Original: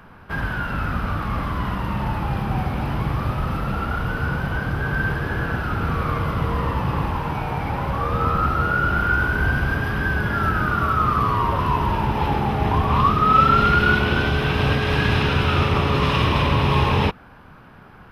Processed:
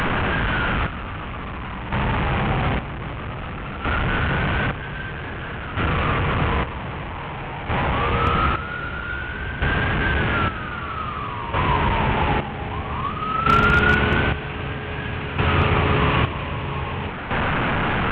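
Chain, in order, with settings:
linear delta modulator 16 kbit/s, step −15 dBFS
square-wave tremolo 0.52 Hz, depth 65%, duty 45%
wave folding −7 dBFS

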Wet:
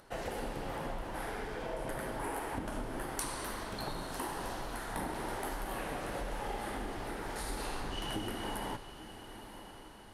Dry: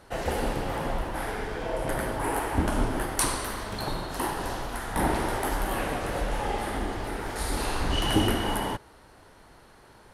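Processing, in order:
downward compressor, threshold −28 dBFS, peak gain reduction 10.5 dB
parametric band 71 Hz −8 dB 0.68 octaves
upward compression, threshold −54 dBFS
on a send: feedback delay with all-pass diffusion 984 ms, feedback 49%, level −11.5 dB
on the sum: level −6 dB

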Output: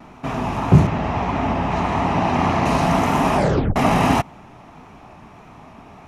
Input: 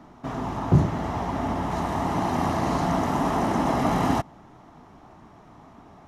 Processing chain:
0:00.87–0:02.66: high-frequency loss of the air 89 metres
pitch vibrato 1.7 Hz 51 cents
thirty-one-band graphic EQ 315 Hz −4 dB, 2,500 Hz +11 dB, 10,000 Hz +3 dB
0:03.35: tape stop 0.41 s
level +6.5 dB

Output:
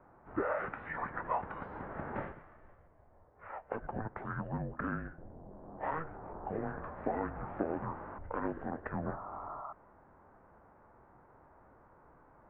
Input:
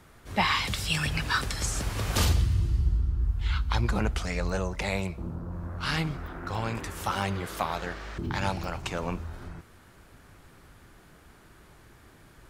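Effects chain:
downward compressor, threshold −26 dBFS, peak gain reduction 7.5 dB
single-sideband voice off tune −320 Hz 380–2,500 Hz
formants moved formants −5 semitones
sound drawn into the spectrogram noise, 0:09.05–0:09.73, 590–1,400 Hz −43 dBFS
level −1.5 dB

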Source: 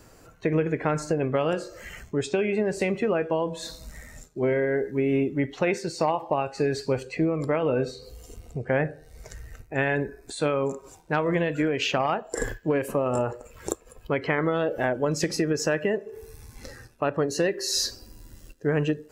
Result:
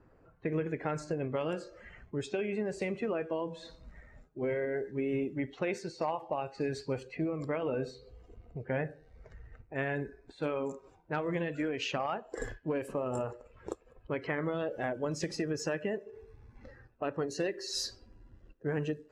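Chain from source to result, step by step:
spectral magnitudes quantised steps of 15 dB
low-pass that shuts in the quiet parts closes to 1,400 Hz, open at −21 dBFS
level −8.5 dB

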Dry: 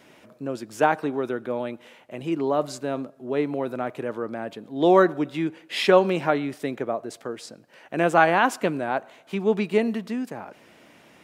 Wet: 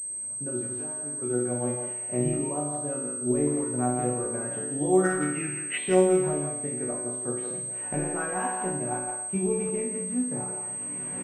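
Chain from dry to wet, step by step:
hearing-aid frequency compression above 2,900 Hz 1.5 to 1
camcorder AGC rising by 17 dB per second
low-shelf EQ 360 Hz +12 dB
0:00.68–0:01.22: downward compressor 6 to 1, threshold −23 dBFS, peak gain reduction 14 dB
high-frequency loss of the air 270 metres
resonators tuned to a chord B2 minor, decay 0.76 s
0:05.05–0:05.78: gain on a spectral selection 1,200–3,000 Hz +12 dB
far-end echo of a speakerphone 170 ms, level −7 dB
switching amplifier with a slow clock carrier 8,300 Hz
level +5 dB

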